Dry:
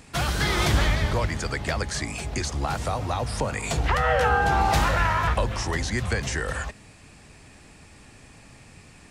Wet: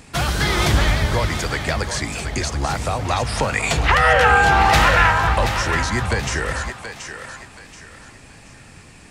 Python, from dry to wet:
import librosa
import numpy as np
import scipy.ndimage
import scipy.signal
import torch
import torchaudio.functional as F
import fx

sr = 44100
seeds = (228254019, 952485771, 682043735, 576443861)

p1 = fx.peak_eq(x, sr, hz=2300.0, db=7.0, octaves=2.0, at=(3.05, 5.11))
p2 = p1 + fx.echo_thinned(p1, sr, ms=729, feedback_pct=35, hz=510.0, wet_db=-8, dry=0)
y = p2 * librosa.db_to_amplitude(4.5)